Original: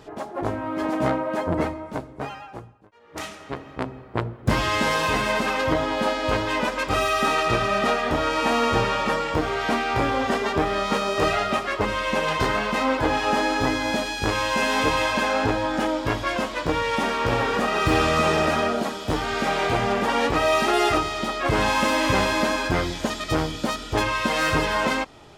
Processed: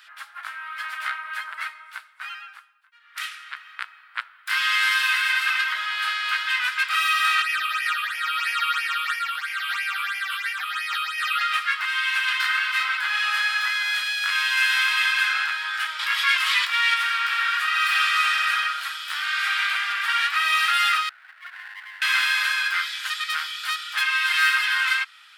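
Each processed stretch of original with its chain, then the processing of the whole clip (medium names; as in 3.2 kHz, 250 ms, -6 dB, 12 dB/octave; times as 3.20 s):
7.42–11.41 s: CVSD coder 64 kbps + phase shifter stages 8, 3 Hz, lowest notch 230–1200 Hz
15.99–16.94 s: band-stop 1.5 kHz, Q 6.4 + level flattener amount 100%
21.09–22.02 s: CVSD coder 16 kbps + cascade formant filter a + sliding maximum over 17 samples
whole clip: elliptic high-pass 1.4 kHz, stop band 80 dB; peaking EQ 6.5 kHz -10.5 dB 0.71 oct; trim +7 dB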